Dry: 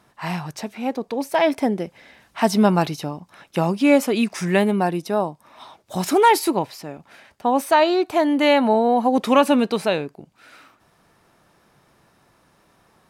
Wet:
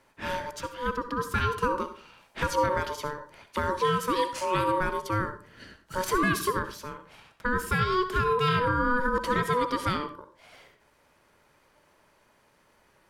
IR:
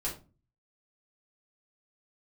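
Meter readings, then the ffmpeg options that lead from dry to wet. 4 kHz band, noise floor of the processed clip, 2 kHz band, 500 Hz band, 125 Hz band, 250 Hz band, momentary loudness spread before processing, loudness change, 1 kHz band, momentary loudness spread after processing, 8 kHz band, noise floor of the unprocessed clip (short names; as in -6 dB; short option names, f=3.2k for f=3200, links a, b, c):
-7.0 dB, -64 dBFS, -2.0 dB, -10.0 dB, -4.0 dB, -13.5 dB, 14 LU, -8.0 dB, -6.0 dB, 12 LU, -6.5 dB, -60 dBFS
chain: -filter_complex "[0:a]aeval=exprs='val(0)*sin(2*PI*740*n/s)':c=same,alimiter=limit=-12.5dB:level=0:latency=1:release=166,asplit=2[a][b];[1:a]atrim=start_sample=2205,lowshelf=f=180:g=-10.5,adelay=60[c];[b][c]afir=irnorm=-1:irlink=0,volume=-12.5dB[d];[a][d]amix=inputs=2:normalize=0,volume=-2.5dB"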